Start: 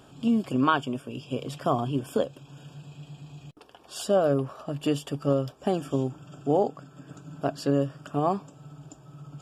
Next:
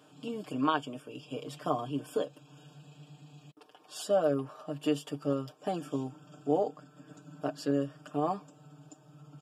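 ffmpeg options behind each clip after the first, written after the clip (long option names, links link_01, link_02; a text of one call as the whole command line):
ffmpeg -i in.wav -af "highpass=200,aecho=1:1:6.6:0.73,volume=-7dB" out.wav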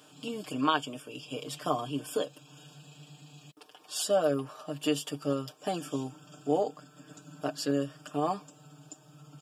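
ffmpeg -i in.wav -af "highshelf=frequency=2200:gain=10" out.wav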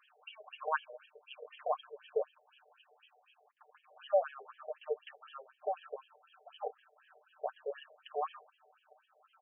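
ffmpeg -i in.wav -af "afftfilt=real='re*between(b*sr/1024,550*pow(2400/550,0.5+0.5*sin(2*PI*4*pts/sr))/1.41,550*pow(2400/550,0.5+0.5*sin(2*PI*4*pts/sr))*1.41)':imag='im*between(b*sr/1024,550*pow(2400/550,0.5+0.5*sin(2*PI*4*pts/sr))/1.41,550*pow(2400/550,0.5+0.5*sin(2*PI*4*pts/sr))*1.41)':win_size=1024:overlap=0.75,volume=-1dB" out.wav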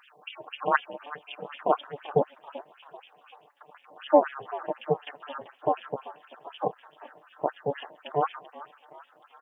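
ffmpeg -i in.wav -filter_complex "[0:a]asplit=5[link_01][link_02][link_03][link_04][link_05];[link_02]adelay=387,afreqshift=110,volume=-17.5dB[link_06];[link_03]adelay=774,afreqshift=220,volume=-24.2dB[link_07];[link_04]adelay=1161,afreqshift=330,volume=-31dB[link_08];[link_05]adelay=1548,afreqshift=440,volume=-37.7dB[link_09];[link_01][link_06][link_07][link_08][link_09]amix=inputs=5:normalize=0,tremolo=f=290:d=0.857,acontrast=88,volume=6.5dB" out.wav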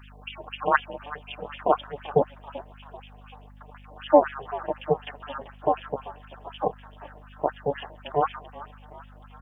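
ffmpeg -i in.wav -af "aeval=exprs='val(0)+0.00316*(sin(2*PI*50*n/s)+sin(2*PI*2*50*n/s)/2+sin(2*PI*3*50*n/s)/3+sin(2*PI*4*50*n/s)/4+sin(2*PI*5*50*n/s)/5)':channel_layout=same,volume=2.5dB" out.wav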